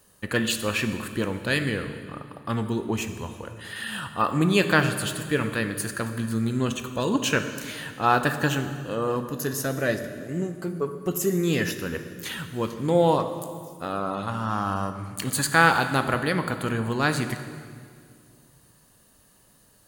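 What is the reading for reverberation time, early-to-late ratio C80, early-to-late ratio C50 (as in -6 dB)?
2.1 s, 10.5 dB, 9.0 dB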